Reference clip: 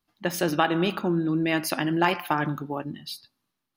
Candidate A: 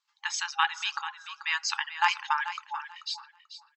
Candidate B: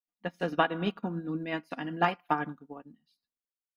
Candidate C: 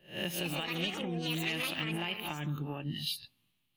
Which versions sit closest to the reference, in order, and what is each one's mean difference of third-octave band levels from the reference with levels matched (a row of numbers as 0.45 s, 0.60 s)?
B, C, A; 6.5 dB, 8.5 dB, 17.0 dB